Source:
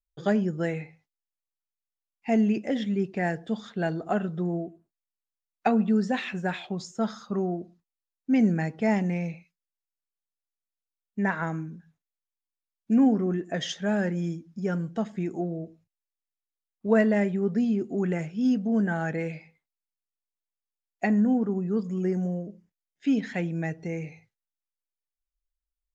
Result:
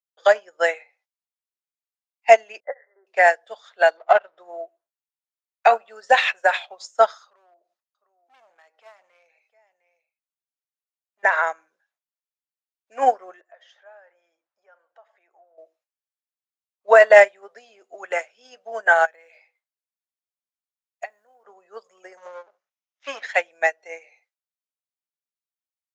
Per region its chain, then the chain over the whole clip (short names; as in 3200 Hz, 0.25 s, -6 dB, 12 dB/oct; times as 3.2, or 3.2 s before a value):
2.6–3.07 expander -29 dBFS + compressor 2.5:1, threshold -32 dBFS + brick-wall FIR band-pass 300–2100 Hz
3.97–4.38 half-wave gain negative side -7 dB + transient shaper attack +3 dB, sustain -1 dB + air absorption 170 m
7.24–11.23 echo 0.707 s -24 dB + hard clip -23.5 dBFS + compressor 2.5:1, threshold -49 dBFS
13.41–15.58 band-pass 960 Hz, Q 0.98 + compressor 2.5:1, threshold -49 dBFS
19.05–21.45 compressor, threshold -36 dBFS + short-mantissa float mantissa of 6-bit
22.17–23.23 minimum comb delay 0.33 ms + careless resampling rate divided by 3×, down none, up filtered + bell 1300 Hz +8 dB 0.81 oct
whole clip: Chebyshev high-pass 570 Hz, order 4; maximiser +23.5 dB; upward expander 2.5:1, over -24 dBFS